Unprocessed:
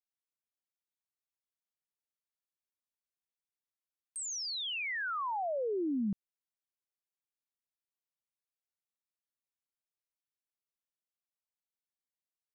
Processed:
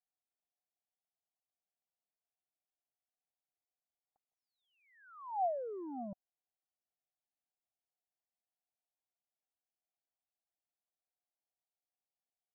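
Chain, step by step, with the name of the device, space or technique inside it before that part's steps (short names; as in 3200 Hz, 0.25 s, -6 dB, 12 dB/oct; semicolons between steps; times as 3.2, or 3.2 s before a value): overdriven synthesiser ladder filter (soft clip -37 dBFS, distortion -13 dB; ladder low-pass 790 Hz, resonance 75%); gain +5.5 dB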